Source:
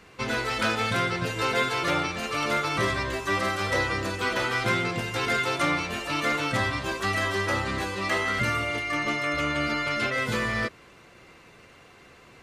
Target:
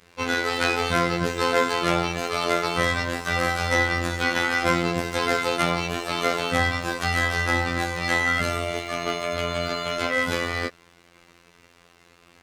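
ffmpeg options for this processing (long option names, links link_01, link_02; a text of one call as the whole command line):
ffmpeg -i in.wav -af "aeval=exprs='sgn(val(0))*max(abs(val(0))-0.00224,0)':channel_layout=same,afftfilt=real='hypot(re,im)*cos(PI*b)':imag='0':win_size=2048:overlap=0.75,volume=7.5dB" out.wav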